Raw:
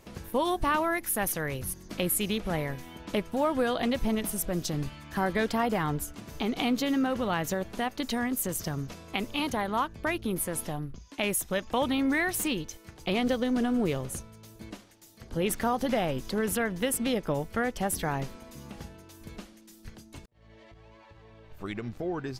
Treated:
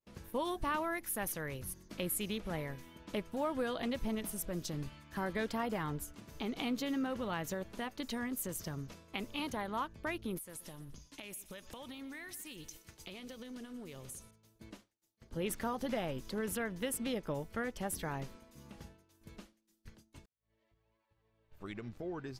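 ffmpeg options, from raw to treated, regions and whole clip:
-filter_complex "[0:a]asettb=1/sr,asplit=3[a][b][c];[a]atrim=end=10.374[d];[b]atrim=start=10.37:end=14.31,asetpts=PTS-STARTPTS,afade=t=in:d=0.004:c=qsin,afade=t=out:st=3.936:d=0.004:c=qsin,highshelf=f=2.7k:g=11,acompressor=threshold=-35dB:ratio=10:attack=3.2:release=140:knee=1:detection=peak,aecho=1:1:123|246|369|492|615:0.15|0.0793|0.042|0.0223|0.0118,atrim=end_sample=173754[e];[c]atrim=start=14.306[f];[d][e]acrossfade=d=0.004:c1=hsin:c2=qsin[g];[g][f]acrossfade=d=0.004:c1=qsin:c2=hsin,agate=range=-33dB:threshold=-42dB:ratio=3:detection=peak,bandreject=f=740:w=14,volume=-8.5dB"

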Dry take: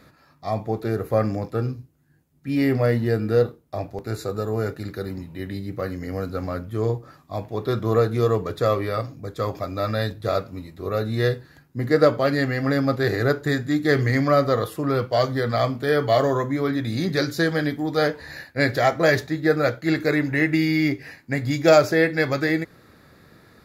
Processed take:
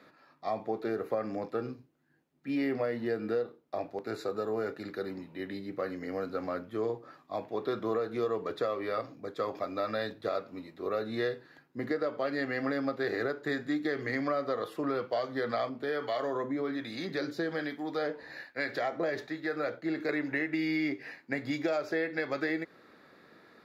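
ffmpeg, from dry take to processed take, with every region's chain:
-filter_complex "[0:a]asettb=1/sr,asplit=3[a][b][c];[a]atrim=end=15.694[d];[b]atrim=start=15.69:end=20.09,asetpts=PTS-STARTPTS,afade=t=in:d=0.004:c=qsin,afade=t=out:st=4.396:d=0.004:c=qsin,acompressor=threshold=-21dB:ratio=2:attack=3.2:release=140:knee=1:detection=peak,acrossover=split=840[e][f];[e]aeval=exprs='val(0)*(1-0.5/2+0.5/2*cos(2*PI*1.2*n/s))':c=same[g];[f]aeval=exprs='val(0)*(1-0.5/2-0.5/2*cos(2*PI*1.2*n/s))':c=same[h];[g][h]amix=inputs=2:normalize=0[i];[c]atrim=start=20.086[j];[d][i]acrossfade=d=0.004:c1=hsin:c2=qsin[k];[k][j]acrossfade=d=0.004:c1=qsin:c2=hsin,acrossover=split=210 4700:gain=0.0794 1 0.224[l][m][n];[l][m][n]amix=inputs=3:normalize=0,alimiter=limit=-13dB:level=0:latency=1:release=312,acompressor=threshold=-25dB:ratio=3,volume=-3.5dB"

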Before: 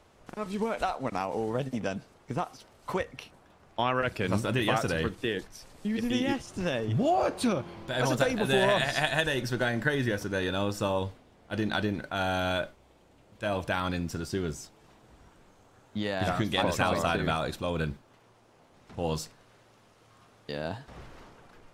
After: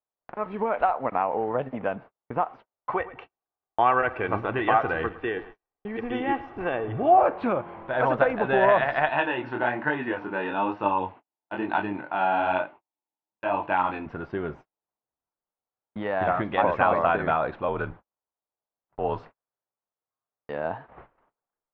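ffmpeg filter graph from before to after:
-filter_complex "[0:a]asettb=1/sr,asplit=3[a][b][c];[a]atrim=end=2.914[d];[b]atrim=start=2.91:end=7.21,asetpts=PTS-STARTPTS,afade=t=in:d=0.004:c=qsin,afade=t=out:st=4.296:d=0.004:c=qsin,aecho=1:1:2.6:0.44,atrim=end_sample=189630,adynamicequalizer=threshold=0.00708:dfrequency=460:dqfactor=1.6:tfrequency=460:tqfactor=1.6:attack=5:release=100:ratio=0.375:range=1.5:mode=cutabove:tftype=bell,aecho=1:1:110|220|330|440:0.141|0.0593|0.0249|0.0105,atrim=end_sample=189630[e];[c]atrim=start=7.206[f];[d][e]acrossfade=d=0.004:c1=hsin:c2=qsin[g];[g][f]acrossfade=d=0.004:c1=qsin:c2=hsin,asettb=1/sr,asplit=3[h][i][j];[h]atrim=end=9.094[k];[i]atrim=start=9.09:end=14.06,asetpts=PTS-STARTPTS,afade=t=in:d=0.004:c=qsin,afade=t=out:st=4.966:d=0.004:c=qsin,flanger=delay=20:depth=6.4:speed=1.1,highpass=110,equalizer=f=310:t=q:w=4:g=8,equalizer=f=520:t=q:w=4:g=-5,equalizer=f=900:t=q:w=4:g=9,equalizer=f=2.7k:t=q:w=4:g=9,equalizer=f=4.2k:t=q:w=4:g=6,lowpass=f=7.6k:w=0.5412,lowpass=f=7.6k:w=1.3066[l];[j]atrim=start=14.056[m];[k][l]acrossfade=d=0.004:c1=hsin:c2=qsin[n];[n][m]acrossfade=d=0.004:c1=qsin:c2=hsin,asettb=1/sr,asplit=3[o][p][q];[o]atrim=end=17.684[r];[p]atrim=start=17.68:end=19.23,asetpts=PTS-STARTPTS,afade=t=in:d=0.004:c=qsin,afade=t=out:st=1.546:d=0.004:c=qsin,afreqshift=-48,equalizer=f=2.3k:w=3.6:g=-4[s];[q]atrim=start=19.226[t];[r][s]acrossfade=d=0.004:c1=hsin:c2=qsin[u];[u][t]acrossfade=d=0.004:c1=qsin:c2=hsin,lowpass=f=2.6k:w=0.5412,lowpass=f=2.6k:w=1.3066,equalizer=f=880:t=o:w=2.6:g=14,agate=range=-42dB:threshold=-37dB:ratio=16:detection=peak,volume=-5.5dB"

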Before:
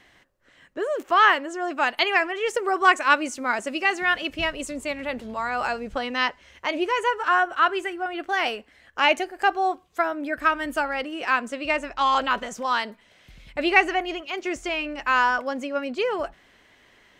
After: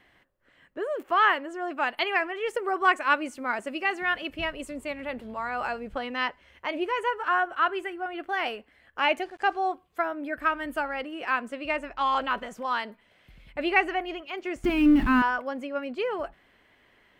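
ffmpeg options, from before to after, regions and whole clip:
-filter_complex "[0:a]asettb=1/sr,asplit=3[a][b][c];[a]atrim=end=9.224[d];[b]atrim=start=9.22:end=9.72,asetpts=PTS-STARTPTS,afade=t=in:d=0.004:c=qsin,afade=t=out:st=0.496:d=0.004:c=qsin,aeval=exprs='val(0)*gte(abs(val(0)),0.00447)':c=same,lowpass=f=6.4k:t=q:w=1.7[e];[c]atrim=start=9.716[f];[d][e]acrossfade=d=0.004:c1=hsin:c2=qsin[g];[g][f]acrossfade=d=0.004:c1=qsin:c2=hsin,asettb=1/sr,asplit=3[h][i][j];[h]atrim=end=14.644[k];[i]atrim=start=14.64:end=15.22,asetpts=PTS-STARTPTS,afade=t=in:d=0.004:c=qsin,afade=t=out:st=0.576:d=0.004:c=qsin,aeval=exprs='val(0)+0.5*0.0531*sgn(val(0))':c=same,lowpass=f=3.1k:p=1,lowshelf=f=370:t=q:w=3:g=11.5[l];[j]atrim=start=15.216[m];[k][l]acrossfade=d=0.004:c1=hsin:c2=qsin[n];[n][m]acrossfade=d=0.004:c1=qsin:c2=hsin,equalizer=f=6.3k:t=o:w=1:g=-11,bandreject=f=3.8k:w=24,volume=-4dB"

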